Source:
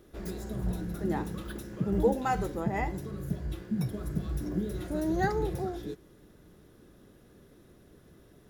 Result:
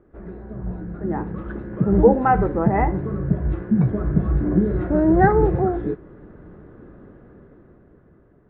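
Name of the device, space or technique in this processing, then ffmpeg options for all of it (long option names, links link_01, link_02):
action camera in a waterproof case: -af "lowpass=frequency=1700:width=0.5412,lowpass=frequency=1700:width=1.3066,dynaudnorm=framelen=330:gausssize=9:maxgain=12.5dB,volume=1.5dB" -ar 22050 -c:a aac -b:a 48k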